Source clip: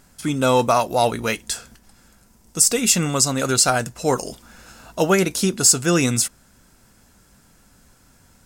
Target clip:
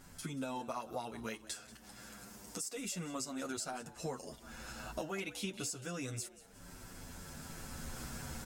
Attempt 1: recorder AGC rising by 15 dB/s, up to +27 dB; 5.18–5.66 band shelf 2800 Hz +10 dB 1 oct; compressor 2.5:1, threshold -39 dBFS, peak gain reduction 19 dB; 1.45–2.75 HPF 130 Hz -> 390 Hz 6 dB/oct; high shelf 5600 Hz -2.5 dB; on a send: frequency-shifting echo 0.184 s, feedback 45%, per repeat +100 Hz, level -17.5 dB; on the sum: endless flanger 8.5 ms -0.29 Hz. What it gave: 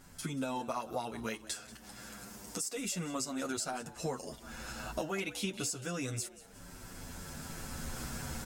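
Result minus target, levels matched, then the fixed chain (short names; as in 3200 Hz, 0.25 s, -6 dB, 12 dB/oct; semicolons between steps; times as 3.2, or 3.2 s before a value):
compressor: peak gain reduction -4 dB
recorder AGC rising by 15 dB/s, up to +27 dB; 5.18–5.66 band shelf 2800 Hz +10 dB 1 oct; compressor 2.5:1, threshold -45.5 dBFS, peak gain reduction 22.5 dB; 1.45–2.75 HPF 130 Hz -> 390 Hz 6 dB/oct; high shelf 5600 Hz -2.5 dB; on a send: frequency-shifting echo 0.184 s, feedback 45%, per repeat +100 Hz, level -17.5 dB; on the sum: endless flanger 8.5 ms -0.29 Hz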